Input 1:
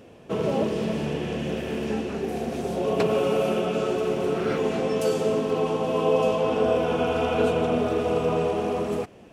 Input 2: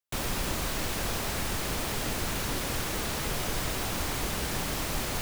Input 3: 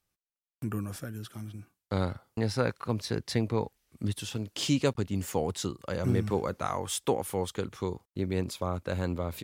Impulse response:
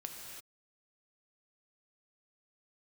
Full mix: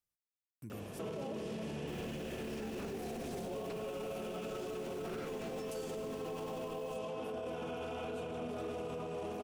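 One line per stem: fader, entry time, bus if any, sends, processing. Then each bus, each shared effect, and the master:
+1.5 dB, 0.70 s, bus A, no send, none
-18.5 dB, 1.75 s, no bus, no send, none
-14.5 dB, 0.00 s, bus A, no send, none
bus A: 0.0 dB, treble shelf 6.3 kHz +7 dB; compression 3:1, threshold -33 dBFS, peak gain reduction 13 dB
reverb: none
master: peak limiter -33.5 dBFS, peak gain reduction 13.5 dB

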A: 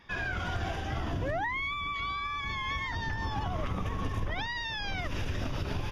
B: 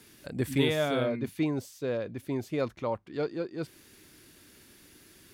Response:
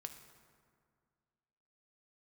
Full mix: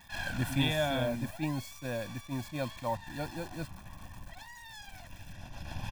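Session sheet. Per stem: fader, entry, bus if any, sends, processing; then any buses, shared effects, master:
-3.5 dB, 0.00 s, no send, one-sided wavefolder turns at -36.5 dBFS; treble shelf 9.1 kHz +9.5 dB; auto duck -13 dB, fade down 1.15 s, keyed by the second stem
-4.0 dB, 0.00 s, no send, high-pass 47 Hz 6 dB/octave; bit crusher 8-bit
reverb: none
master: comb 1.2 ms, depth 98%; attacks held to a fixed rise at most 290 dB/s

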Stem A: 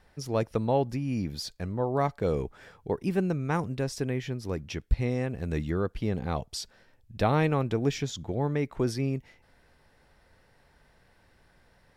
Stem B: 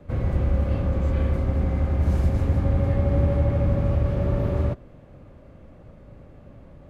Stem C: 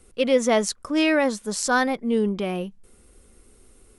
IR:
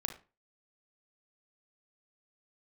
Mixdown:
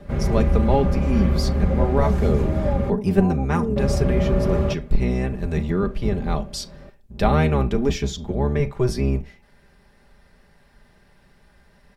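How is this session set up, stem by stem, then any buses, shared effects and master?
+0.5 dB, 0.00 s, send -7 dB, octave divider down 1 oct, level +3 dB
-0.5 dB, 0.00 s, muted 2.90–3.76 s, send -11.5 dB, gain riding
-7.5 dB, 1.50 s, no send, elliptic low-pass 880 Hz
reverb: on, RT60 0.30 s, pre-delay 34 ms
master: comb 5 ms, depth 60%

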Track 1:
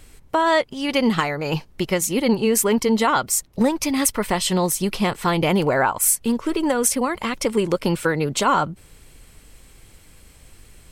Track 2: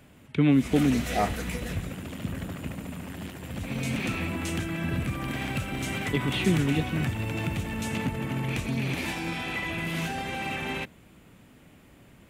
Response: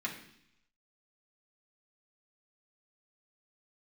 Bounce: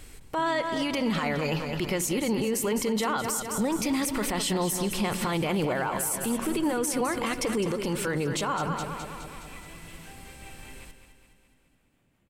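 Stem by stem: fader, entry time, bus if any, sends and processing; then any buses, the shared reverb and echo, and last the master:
0.0 dB, 0.00 s, send -17.5 dB, echo send -10 dB, peak limiter -14 dBFS, peak gain reduction 10 dB
-15.0 dB, 0.00 s, no send, echo send -9.5 dB, harmonic tremolo 5.3 Hz, depth 50%, crossover 400 Hz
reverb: on, RT60 0.70 s, pre-delay 3 ms
echo: feedback delay 209 ms, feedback 57%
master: peak limiter -19.5 dBFS, peak gain reduction 8.5 dB

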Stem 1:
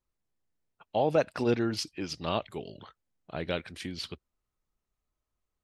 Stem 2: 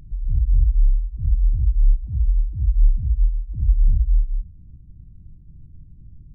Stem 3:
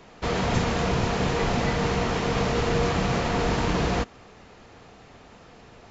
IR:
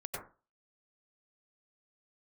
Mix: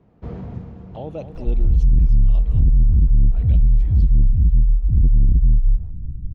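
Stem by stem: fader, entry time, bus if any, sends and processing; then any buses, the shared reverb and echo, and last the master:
-7.0 dB, 0.00 s, no send, echo send -11.5 dB, touch-sensitive flanger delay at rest 5.8 ms, full sweep at -27.5 dBFS
+1.5 dB, 1.35 s, no send, no echo send, level rider gain up to 9 dB
-16.0 dB, 0.00 s, no send, echo send -17.5 dB, high-pass 93 Hz; tilt EQ -4.5 dB/octave; auto duck -12 dB, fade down 0.50 s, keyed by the first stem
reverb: none
echo: feedback delay 231 ms, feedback 40%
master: tilt EQ -1.5 dB/octave; saturation -5 dBFS, distortion -9 dB; compression, threshold -11 dBFS, peak gain reduction 5 dB

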